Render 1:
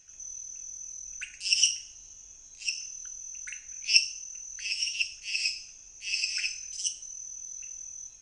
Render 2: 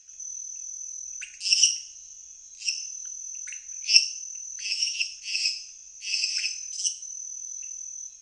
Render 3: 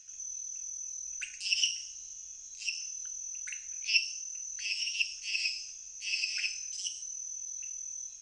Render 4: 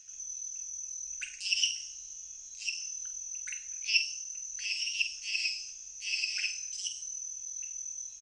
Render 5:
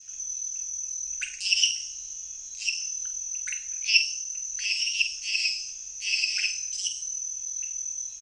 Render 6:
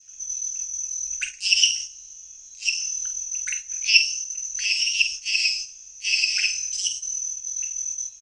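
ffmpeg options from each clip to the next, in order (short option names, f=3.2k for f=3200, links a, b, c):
-af "equalizer=f=5.3k:t=o:w=2.5:g=12.5,volume=-8dB"
-filter_complex "[0:a]acrossover=split=3700[a][b];[b]acompressor=threshold=-38dB:ratio=4:attack=1:release=60[c];[a][c]amix=inputs=2:normalize=0"
-filter_complex "[0:a]asplit=2[a][b];[b]adelay=48,volume=-11dB[c];[a][c]amix=inputs=2:normalize=0"
-af "adynamicequalizer=threshold=0.00398:dfrequency=1600:dqfactor=0.85:tfrequency=1600:tqfactor=0.85:attack=5:release=100:ratio=0.375:range=2:mode=cutabove:tftype=bell,volume=7dB"
-af "agate=range=-9dB:threshold=-34dB:ratio=16:detection=peak,volume=4.5dB"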